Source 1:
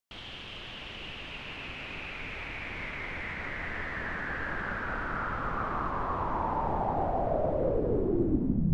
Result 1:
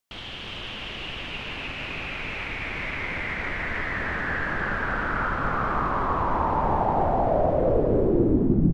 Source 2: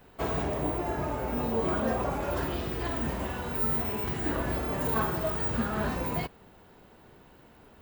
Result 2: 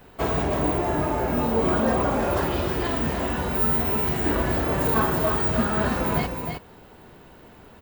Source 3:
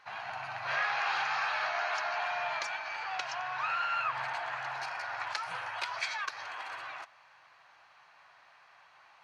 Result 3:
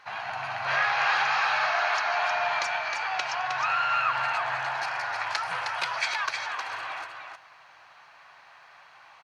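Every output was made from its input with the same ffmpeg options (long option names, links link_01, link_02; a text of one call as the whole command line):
ffmpeg -i in.wav -af "aecho=1:1:312:0.531,volume=6dB" out.wav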